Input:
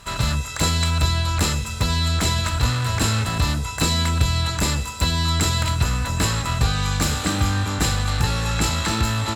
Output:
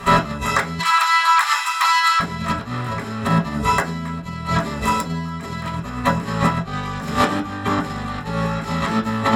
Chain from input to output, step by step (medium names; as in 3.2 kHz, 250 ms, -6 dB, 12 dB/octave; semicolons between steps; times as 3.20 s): 0.79–2.20 s: steep high-pass 900 Hz 48 dB/octave; compressor with a negative ratio -27 dBFS, ratio -0.5; reverberation RT60 0.35 s, pre-delay 3 ms, DRR -3.5 dB; trim -3 dB